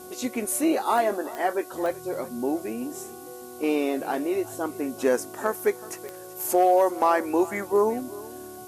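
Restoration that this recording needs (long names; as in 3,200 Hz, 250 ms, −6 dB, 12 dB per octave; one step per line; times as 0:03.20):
click removal
hum removal 367.6 Hz, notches 4
noise reduction from a noise print 27 dB
echo removal 376 ms −19 dB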